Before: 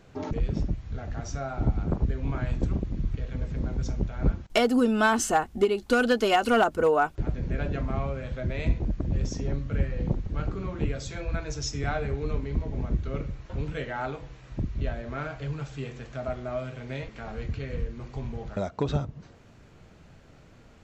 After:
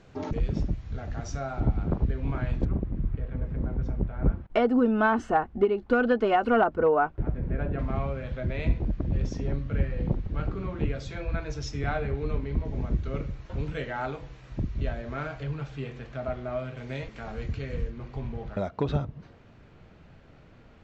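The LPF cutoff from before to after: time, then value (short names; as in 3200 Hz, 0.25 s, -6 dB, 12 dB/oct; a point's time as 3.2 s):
7300 Hz
from 1.6 s 3900 Hz
from 2.65 s 1700 Hz
from 7.79 s 4000 Hz
from 12.65 s 6700 Hz
from 15.43 s 4000 Hz
from 16.77 s 8900 Hz
from 17.9 s 3800 Hz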